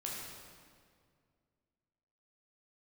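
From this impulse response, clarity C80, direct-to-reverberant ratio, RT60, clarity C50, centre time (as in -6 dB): 1.0 dB, -4.0 dB, 2.1 s, -0.5 dB, 0.105 s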